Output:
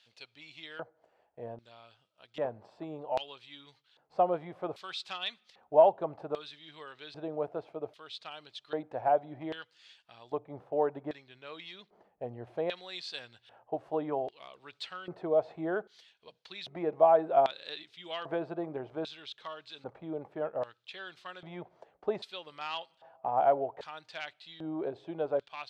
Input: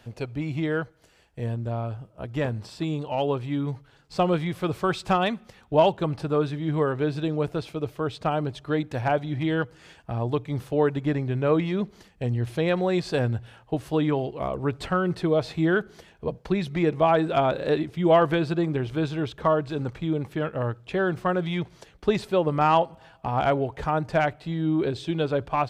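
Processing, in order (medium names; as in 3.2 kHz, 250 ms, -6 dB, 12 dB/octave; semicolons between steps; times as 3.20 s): LFO band-pass square 0.63 Hz 690–3800 Hz; 10.37–12.29 s: tape noise reduction on one side only decoder only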